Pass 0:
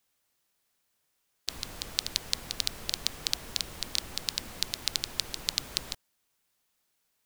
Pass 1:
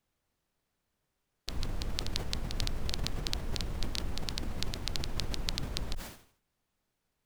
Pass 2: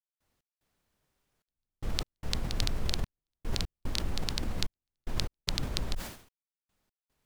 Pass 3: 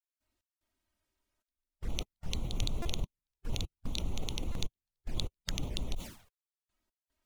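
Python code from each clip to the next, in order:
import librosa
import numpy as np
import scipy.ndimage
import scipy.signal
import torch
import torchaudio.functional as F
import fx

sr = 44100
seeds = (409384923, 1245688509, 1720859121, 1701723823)

y1 = fx.tilt_eq(x, sr, slope=-3.0)
y1 = fx.sustainer(y1, sr, db_per_s=110.0)
y1 = y1 * librosa.db_to_amplitude(-1.0)
y2 = fx.step_gate(y1, sr, bpm=74, pattern='.x.xxxx.', floor_db=-60.0, edge_ms=4.5)
y2 = y2 * librosa.db_to_amplitude(3.0)
y3 = fx.spec_quant(y2, sr, step_db=15)
y3 = fx.env_flanger(y3, sr, rest_ms=3.2, full_db=-28.5)
y3 = fx.buffer_glitch(y3, sr, at_s=(2.82, 4.52), block=128, repeats=10)
y3 = y3 * librosa.db_to_amplitude(-2.0)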